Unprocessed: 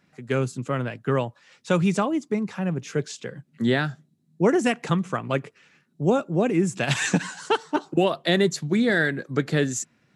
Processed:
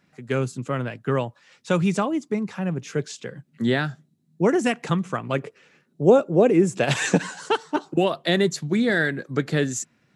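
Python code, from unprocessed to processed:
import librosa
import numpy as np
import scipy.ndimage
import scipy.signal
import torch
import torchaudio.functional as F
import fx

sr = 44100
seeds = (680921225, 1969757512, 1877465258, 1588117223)

y = fx.peak_eq(x, sr, hz=480.0, db=8.5, octaves=1.1, at=(5.38, 7.49))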